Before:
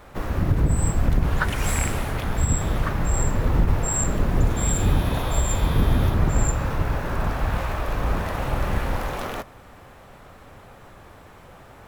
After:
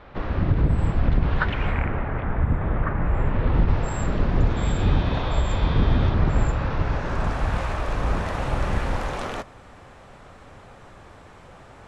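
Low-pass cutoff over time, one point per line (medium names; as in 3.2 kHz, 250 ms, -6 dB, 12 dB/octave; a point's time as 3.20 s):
low-pass 24 dB/octave
1.43 s 4.1 kHz
1.87 s 2.1 kHz
2.95 s 2.1 kHz
3.76 s 4.9 kHz
6.70 s 4.9 kHz
7.34 s 9.1 kHz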